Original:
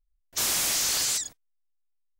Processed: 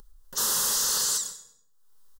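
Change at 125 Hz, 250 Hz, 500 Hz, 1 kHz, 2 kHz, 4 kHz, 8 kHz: -3.5 dB, -2.5 dB, +0.5 dB, +2.5 dB, -5.0 dB, -1.0 dB, +1.0 dB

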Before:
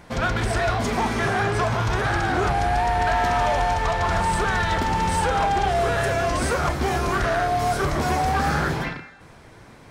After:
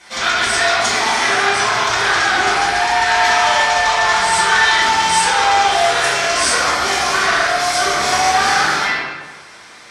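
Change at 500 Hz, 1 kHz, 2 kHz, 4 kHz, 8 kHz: +3.0 dB, +7.5 dB, +12.0 dB, +16.0 dB, +15.5 dB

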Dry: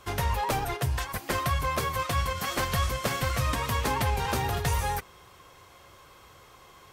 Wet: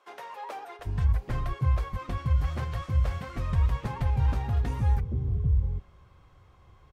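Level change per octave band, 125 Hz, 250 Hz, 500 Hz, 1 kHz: +4.5 dB, -2.0 dB, -9.0 dB, -9.5 dB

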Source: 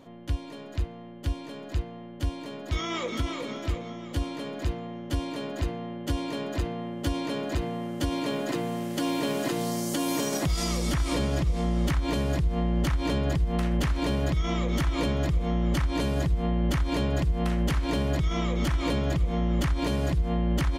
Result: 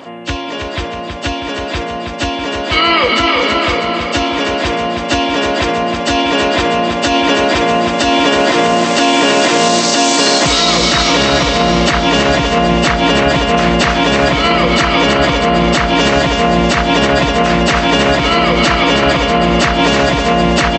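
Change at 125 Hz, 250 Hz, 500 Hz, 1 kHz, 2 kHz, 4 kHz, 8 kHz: +7.5 dB, +14.0 dB, +19.5 dB, +23.0 dB, +24.0 dB, +23.5 dB, +18.5 dB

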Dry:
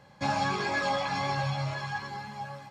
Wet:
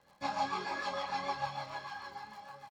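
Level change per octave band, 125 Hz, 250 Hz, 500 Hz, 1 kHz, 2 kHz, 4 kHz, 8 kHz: -19.5 dB, -11.0 dB, -8.5 dB, -5.0 dB, -9.0 dB, -7.0 dB, -9.0 dB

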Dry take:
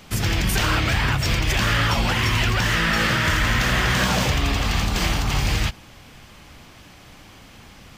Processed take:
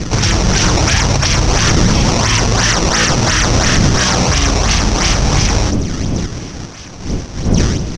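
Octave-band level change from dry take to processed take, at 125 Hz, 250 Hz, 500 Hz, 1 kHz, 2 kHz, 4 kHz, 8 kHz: +9.0 dB, +11.0 dB, +11.0 dB, +7.5 dB, +4.0 dB, +8.5 dB, +15.5 dB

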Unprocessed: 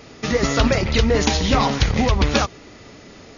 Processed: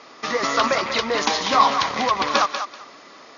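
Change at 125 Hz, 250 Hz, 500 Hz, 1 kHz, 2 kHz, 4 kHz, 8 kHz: -22.0 dB, -9.5 dB, -3.0 dB, +5.5 dB, +0.5 dB, 0.0 dB, no reading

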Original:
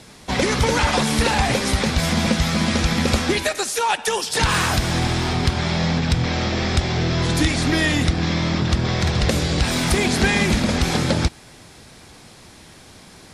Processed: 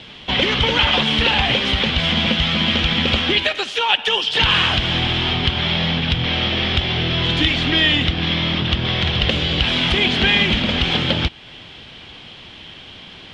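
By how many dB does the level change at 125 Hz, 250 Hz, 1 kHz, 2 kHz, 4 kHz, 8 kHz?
-1.5 dB, -1.5 dB, -0.5 dB, +4.0 dB, +9.0 dB, -14.0 dB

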